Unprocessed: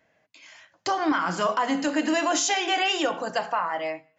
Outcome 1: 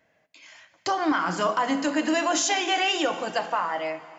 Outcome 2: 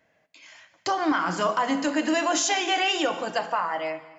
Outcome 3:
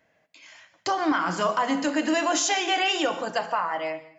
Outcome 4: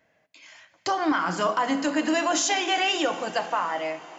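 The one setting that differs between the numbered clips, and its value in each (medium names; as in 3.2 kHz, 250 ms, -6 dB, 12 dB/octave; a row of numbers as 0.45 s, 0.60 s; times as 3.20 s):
plate-style reverb, RT60: 2.6 s, 1.2 s, 0.51 s, 5.3 s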